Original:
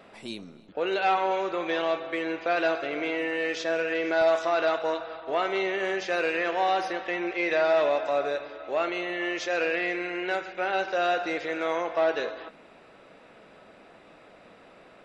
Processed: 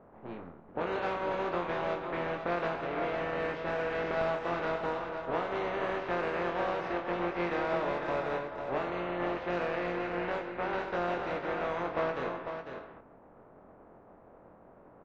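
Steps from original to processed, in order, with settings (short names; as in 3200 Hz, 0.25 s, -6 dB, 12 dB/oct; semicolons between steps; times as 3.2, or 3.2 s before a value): spectral contrast lowered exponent 0.37; low-pass opened by the level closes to 940 Hz, open at -22 dBFS; LPF 1200 Hz 12 dB/oct; compressor, threshold -30 dBFS, peak gain reduction 9 dB; doubler 23 ms -5.5 dB; on a send: echo 0.499 s -7.5 dB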